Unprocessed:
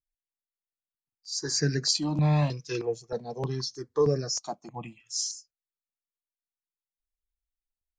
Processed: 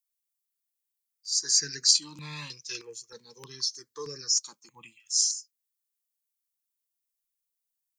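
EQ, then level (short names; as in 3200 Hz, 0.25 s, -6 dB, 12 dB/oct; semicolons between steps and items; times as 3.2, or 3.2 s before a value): Butterworth band-stop 680 Hz, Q 1.6; pre-emphasis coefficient 0.97; +8.5 dB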